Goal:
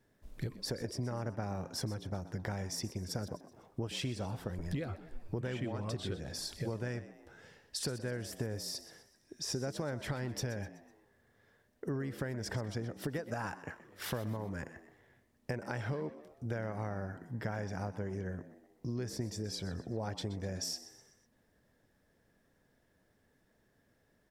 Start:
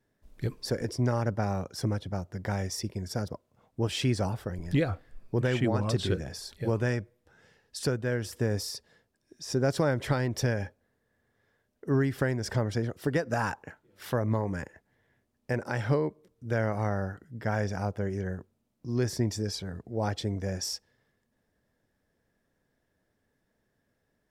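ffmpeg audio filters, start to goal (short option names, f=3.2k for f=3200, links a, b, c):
-filter_complex "[0:a]acompressor=threshold=-39dB:ratio=6,asplit=5[a][b][c][d][e];[b]adelay=125,afreqshift=75,volume=-15dB[f];[c]adelay=250,afreqshift=150,volume=-21.7dB[g];[d]adelay=375,afreqshift=225,volume=-28.5dB[h];[e]adelay=500,afreqshift=300,volume=-35.2dB[i];[a][f][g][h][i]amix=inputs=5:normalize=0,volume=3.5dB"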